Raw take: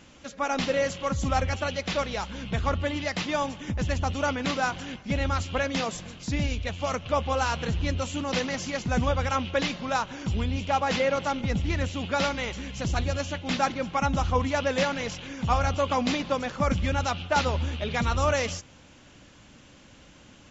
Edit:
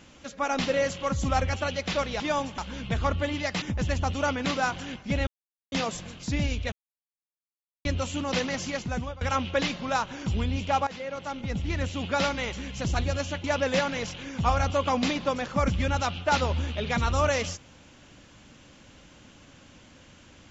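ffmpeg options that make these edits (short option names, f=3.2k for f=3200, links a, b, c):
-filter_complex "[0:a]asplit=11[a][b][c][d][e][f][g][h][i][j][k];[a]atrim=end=2.202[l];[b]atrim=start=3.238:end=3.622[m];[c]atrim=start=2.198:end=3.242[n];[d]atrim=start=3.618:end=5.27,asetpts=PTS-STARTPTS,afade=t=out:st=1.648:d=0.004:c=hsin[o];[e]atrim=start=5.27:end=5.72,asetpts=PTS-STARTPTS,volume=0[p];[f]atrim=start=5.72:end=6.72,asetpts=PTS-STARTPTS,afade=t=in:d=0.004:c=hsin,afade=t=out:st=0.996:d=0.004:c=hsin[q];[g]atrim=start=6.72:end=7.85,asetpts=PTS-STARTPTS,volume=0[r];[h]atrim=start=7.85:end=9.21,asetpts=PTS-STARTPTS,afade=t=in:d=0.004:c=hsin,afade=t=out:st=0.85:d=0.51:silence=0.0749894[s];[i]atrim=start=9.21:end=10.87,asetpts=PTS-STARTPTS,afade=t=in:d=0.004:c=hsin:silence=0.0749894,afade=t=out:st=1.656:d=0.004:c=hsin:silence=0.149624[t];[j]atrim=start=10.87:end=13.442,asetpts=PTS-STARTPTS,afade=t=in:d=1.14:silence=0.149624[u];[k]atrim=start=14.478[v];[l][m]acrossfade=d=0.004:c1=hsin:c2=hsin[w];[w][n]acrossfade=d=0.004:c1=hsin:c2=hsin[x];[o][p][q][r][s][t][u]concat=n=7:v=0:a=1[y];[x][y]acrossfade=d=0.004:c1=hsin:c2=hsin[z];[z][v]acrossfade=d=0.004:c1=hsin:c2=hsin"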